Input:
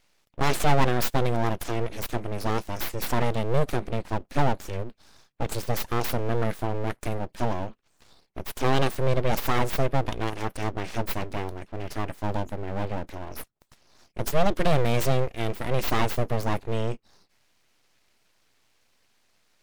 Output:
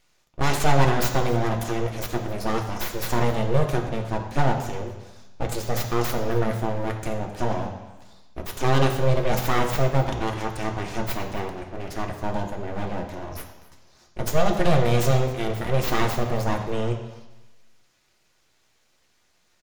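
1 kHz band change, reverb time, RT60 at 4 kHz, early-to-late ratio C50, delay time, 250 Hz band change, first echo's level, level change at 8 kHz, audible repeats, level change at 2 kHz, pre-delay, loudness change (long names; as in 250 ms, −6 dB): +2.0 dB, 1.1 s, 1.1 s, 7.0 dB, 265 ms, +3.0 dB, −20.0 dB, +3.0 dB, 1, +2.5 dB, 3 ms, +2.5 dB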